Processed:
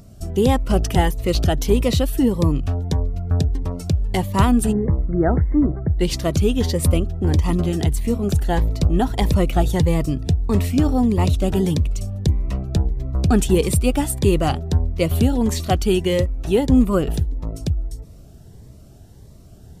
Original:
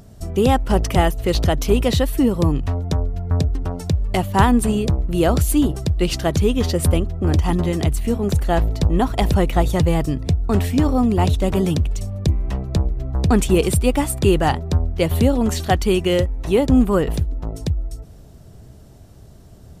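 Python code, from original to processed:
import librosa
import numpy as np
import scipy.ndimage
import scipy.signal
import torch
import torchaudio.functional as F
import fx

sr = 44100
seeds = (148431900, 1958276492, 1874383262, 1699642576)

y = fx.brickwall_lowpass(x, sr, high_hz=2200.0, at=(4.71, 5.99), fade=0.02)
y = fx.notch_cascade(y, sr, direction='rising', hz=1.6)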